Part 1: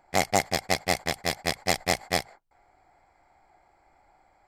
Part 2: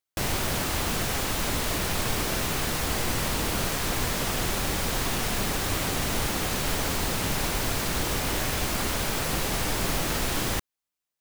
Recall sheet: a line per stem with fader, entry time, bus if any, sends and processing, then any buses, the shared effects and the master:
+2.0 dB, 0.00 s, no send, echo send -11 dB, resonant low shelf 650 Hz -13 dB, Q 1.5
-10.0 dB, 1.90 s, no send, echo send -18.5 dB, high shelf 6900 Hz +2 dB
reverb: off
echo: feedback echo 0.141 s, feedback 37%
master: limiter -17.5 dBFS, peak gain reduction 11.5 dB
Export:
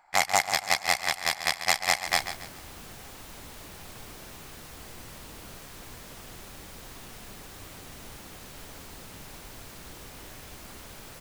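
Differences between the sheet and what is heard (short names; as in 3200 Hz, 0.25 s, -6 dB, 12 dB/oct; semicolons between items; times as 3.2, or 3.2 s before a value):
stem 2 -10.0 dB -> -18.0 dB; master: missing limiter -17.5 dBFS, peak gain reduction 11.5 dB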